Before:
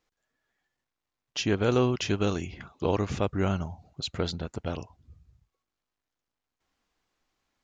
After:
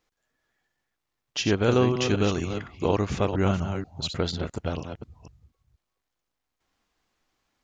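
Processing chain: reverse delay 0.24 s, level -7.5 dB; gain +2.5 dB

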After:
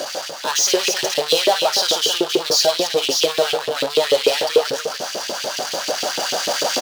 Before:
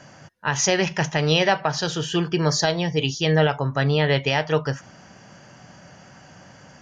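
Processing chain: recorder AGC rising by 11 dB/s; loudspeakers at several distances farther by 19 m -10 dB, 92 m -12 dB; in parallel at -5 dB: wrapped overs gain 13 dB; on the sum: power-law curve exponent 0.35; ten-band EQ 125 Hz +9 dB, 250 Hz +8 dB, 500 Hz +6 dB, 1000 Hz -4 dB, 2000 Hz -10 dB, 4000 Hz +8 dB; LFO high-pass saw up 6.8 Hz 370–3000 Hz; low shelf 300 Hz -12 dB; gain -7.5 dB

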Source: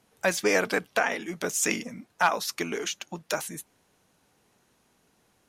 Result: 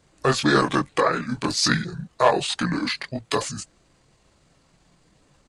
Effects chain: low shelf 110 Hz +9.5 dB; chorus voices 6, 0.78 Hz, delay 23 ms, depth 2.8 ms; pitch shift -6 st; gain +8.5 dB

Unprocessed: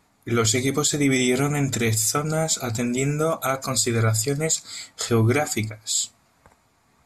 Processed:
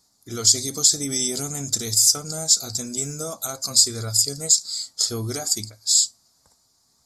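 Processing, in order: resonant high shelf 3500 Hz +12.5 dB, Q 3; gain -9.5 dB

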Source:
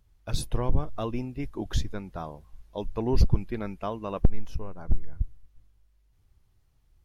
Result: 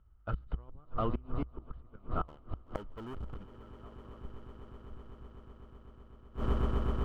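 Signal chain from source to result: median filter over 15 samples; air absorption 380 m; 2.28–3.46 sample leveller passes 5; swelling echo 0.126 s, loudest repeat 8, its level -14 dB; flipped gate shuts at -20 dBFS, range -27 dB; bell 61 Hz +8 dB 0.21 oct; small resonant body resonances 1300/3000 Hz, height 16 dB, ringing for 20 ms; gain -2 dB

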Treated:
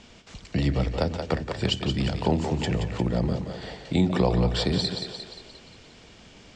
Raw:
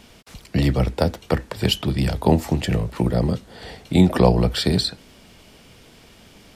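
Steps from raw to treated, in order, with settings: Chebyshev low-pass 7400 Hz, order 4; on a send: split-band echo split 340 Hz, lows 83 ms, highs 0.176 s, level -8 dB; on the sum: compressor 1.5:1, threshold -25 dBFS, peak gain reduction 5.5 dB; gain -1.5 dB

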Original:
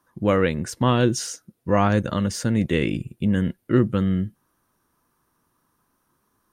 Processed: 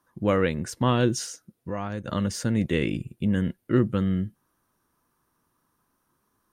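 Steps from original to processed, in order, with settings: 1.24–2.07 compressor 2:1, threshold -33 dBFS, peak gain reduction 10.5 dB; gain -3 dB

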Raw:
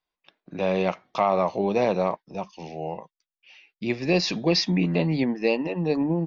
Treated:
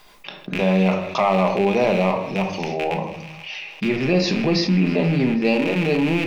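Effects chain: rattling part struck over -36 dBFS, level -22 dBFS; 3.88–5.45 high shelf 2700 Hz -8.5 dB; thin delay 0.16 s, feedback 73%, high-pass 1600 Hz, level -21 dB; shoebox room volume 390 m³, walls furnished, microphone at 1.3 m; fast leveller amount 50%

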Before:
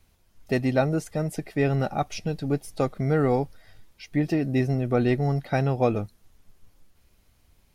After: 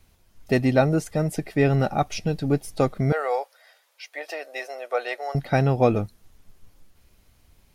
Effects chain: 3.12–5.35 elliptic high-pass 530 Hz, stop band 80 dB; gain +3.5 dB

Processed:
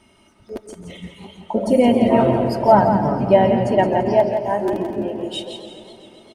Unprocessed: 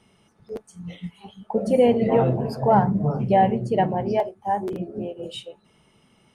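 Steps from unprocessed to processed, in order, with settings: comb 3.2 ms, depth 66%; feedback echo 0.169 s, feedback 38%, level -8 dB; warbling echo 0.133 s, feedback 79%, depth 160 cents, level -15 dB; gain +4 dB

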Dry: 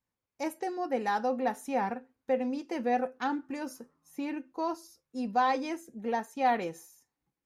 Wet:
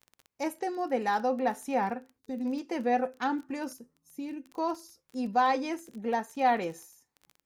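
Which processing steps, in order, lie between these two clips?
2.19–2.45 spectral gain 450–3500 Hz -16 dB; 3.73–4.49 bell 1200 Hz -15 dB 2.5 oct; crackle 18/s -40 dBFS; gain +1.5 dB

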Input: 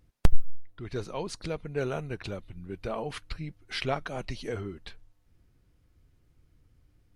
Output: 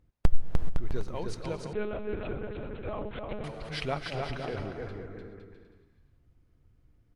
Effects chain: 4.15–4.89 steep low-pass 2200 Hz 48 dB/oct; bouncing-ball echo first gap 0.3 s, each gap 0.7×, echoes 5; non-linear reverb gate 0.45 s rising, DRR 10 dB; 1.73–3.44 monotone LPC vocoder at 8 kHz 210 Hz; mismatched tape noise reduction decoder only; gain -2.5 dB

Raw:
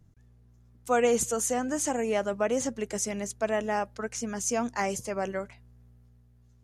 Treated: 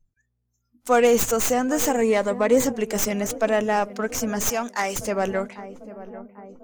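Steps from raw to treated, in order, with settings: tracing distortion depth 0.12 ms; darkening echo 0.796 s, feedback 66%, low-pass 1000 Hz, level -16 dB; in parallel at -7.5 dB: soft clip -31 dBFS, distortion -7 dB; 4.49–4.96 on the sum: low shelf 480 Hz -11 dB; spectral noise reduction 26 dB; 2.01–2.65 ripple EQ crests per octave 0.99, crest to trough 8 dB; gain +5.5 dB

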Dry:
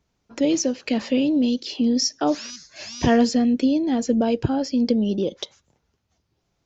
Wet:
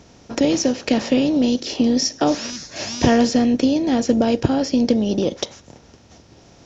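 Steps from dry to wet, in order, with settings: per-bin compression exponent 0.6; transient shaper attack +2 dB, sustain -2 dB

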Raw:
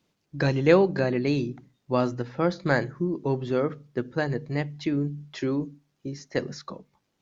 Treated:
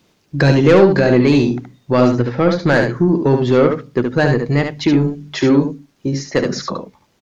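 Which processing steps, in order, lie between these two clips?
2.08–2.69 LPF 3400 Hz 6 dB/oct; in parallel at +2 dB: limiter -18 dBFS, peak gain reduction 12.5 dB; on the sum: soft clip -12 dBFS, distortion -15 dB; echo 72 ms -5.5 dB; gain +7.5 dB

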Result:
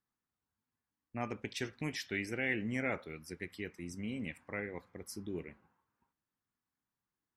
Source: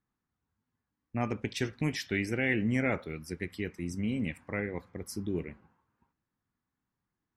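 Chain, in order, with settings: low shelf 280 Hz -7 dB; gain -4 dB

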